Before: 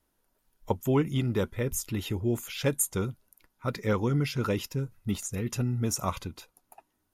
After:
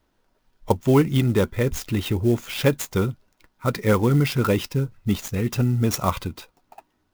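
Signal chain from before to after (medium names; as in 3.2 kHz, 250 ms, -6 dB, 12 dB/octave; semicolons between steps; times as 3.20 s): low-pass 6.3 kHz 24 dB/octave; sampling jitter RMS 0.024 ms; trim +8 dB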